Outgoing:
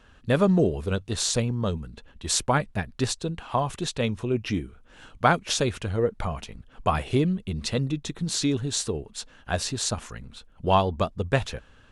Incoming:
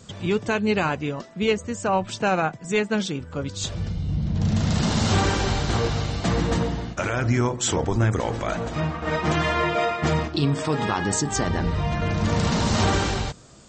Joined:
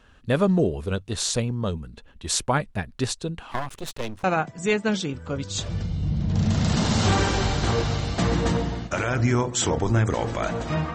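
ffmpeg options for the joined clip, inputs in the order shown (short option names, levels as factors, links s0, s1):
-filter_complex "[0:a]asettb=1/sr,asplit=3[s0][s1][s2];[s0]atrim=end=3.514[s3];[s1]atrim=start=3.51:end=4.24,asetpts=PTS-STARTPTS,afade=t=in:d=0.004:c=qsin,afade=t=out:st=0.726:d=0.004:c=qsin,aeval=exprs='max(val(0),0)':c=same[s4];[s2]atrim=start=4.236[s5];[s3][s4]acrossfade=d=0.004:c1=hsin:c2=qsin[s6];[s6][s5]acrossfade=d=0.004:c1=qsin:c2=hsin,apad=whole_dur=10.94,atrim=end=10.94,atrim=end=4.242[s7];[1:a]atrim=start=2.298:end=9[s8];[s7][s8]acrossfade=d=0.004:c1=hsin:c2=hsin"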